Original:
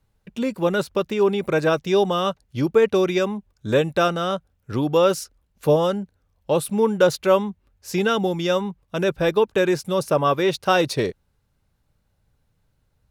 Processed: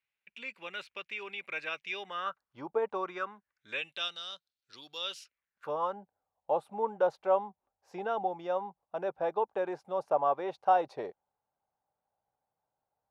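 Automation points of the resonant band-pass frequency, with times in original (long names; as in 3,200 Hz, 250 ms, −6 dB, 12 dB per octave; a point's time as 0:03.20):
resonant band-pass, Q 4.4
0:01.95 2,400 Hz
0:02.77 760 Hz
0:04.22 4,200 Hz
0:04.96 4,200 Hz
0:06.01 780 Hz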